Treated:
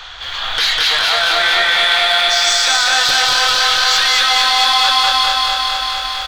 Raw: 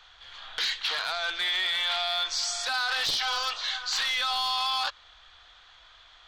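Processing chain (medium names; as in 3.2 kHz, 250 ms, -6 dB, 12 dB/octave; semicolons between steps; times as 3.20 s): 1.33–1.78 s: low-pass 2.2 kHz; in parallel at -5 dB: saturation -31 dBFS, distortion -9 dB; on the sum: feedback delay 200 ms, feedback 47%, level -4.5 dB; loudness maximiser +25 dB; bit-crushed delay 226 ms, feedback 80%, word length 7-bit, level -4 dB; trim -7.5 dB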